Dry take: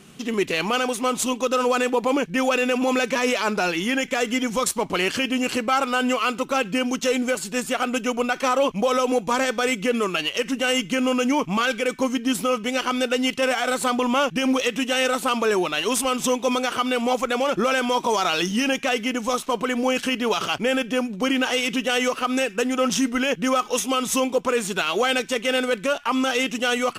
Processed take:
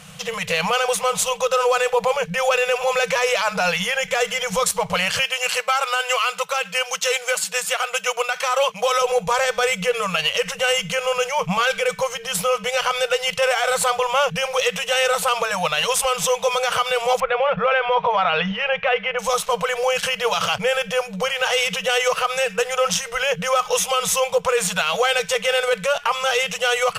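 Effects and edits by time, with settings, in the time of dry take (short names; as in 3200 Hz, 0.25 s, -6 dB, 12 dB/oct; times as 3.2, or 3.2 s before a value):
5.19–9.02 HPF 1100 Hz 6 dB/oct
17.2–19.19 LPF 2800 Hz 24 dB/oct
whole clip: limiter -17.5 dBFS; FFT band-reject 200–450 Hz; dynamic EQ 190 Hz, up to -3 dB, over -47 dBFS, Q 4.2; gain +8 dB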